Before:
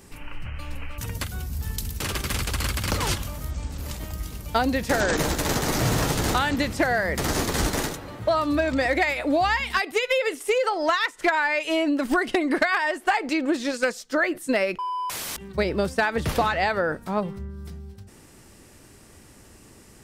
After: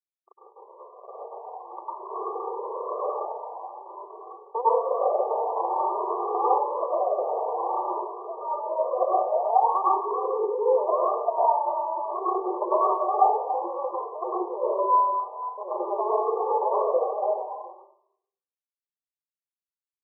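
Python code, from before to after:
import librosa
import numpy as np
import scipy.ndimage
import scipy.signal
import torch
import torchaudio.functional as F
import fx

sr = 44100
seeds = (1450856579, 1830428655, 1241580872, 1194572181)

p1 = fx.wiener(x, sr, points=25)
p2 = fx.tilt_eq(p1, sr, slope=4.0)
p3 = fx.quant_companded(p2, sr, bits=2)
p4 = fx.brickwall_bandpass(p3, sr, low_hz=360.0, high_hz=1200.0)
p5 = p4 + fx.echo_single(p4, sr, ms=284, db=-11.0, dry=0)
p6 = fx.rev_plate(p5, sr, seeds[0], rt60_s=0.71, hf_ratio=0.8, predelay_ms=90, drr_db=-7.5)
y = fx.comb_cascade(p6, sr, direction='rising', hz=0.5)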